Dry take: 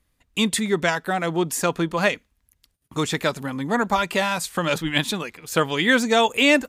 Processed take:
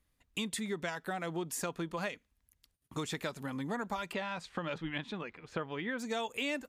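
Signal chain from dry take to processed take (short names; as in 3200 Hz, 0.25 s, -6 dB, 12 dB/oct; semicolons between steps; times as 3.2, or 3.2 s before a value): compressor 4:1, threshold -27 dBFS, peak gain reduction 12.5 dB; 4.12–5.98 LPF 3800 Hz -> 2000 Hz 12 dB/oct; gain -7.5 dB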